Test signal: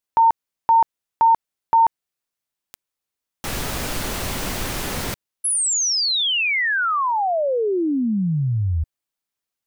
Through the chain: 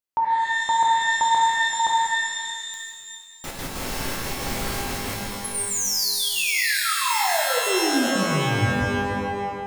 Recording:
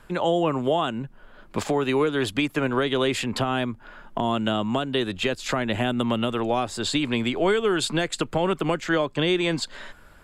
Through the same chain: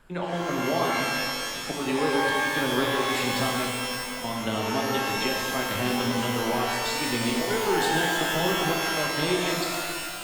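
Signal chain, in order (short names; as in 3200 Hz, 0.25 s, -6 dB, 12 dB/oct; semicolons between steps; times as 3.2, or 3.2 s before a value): step gate "xxx.x.xx" 184 bpm -12 dB; shimmer reverb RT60 2.1 s, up +12 st, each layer -2 dB, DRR -1.5 dB; gain -7 dB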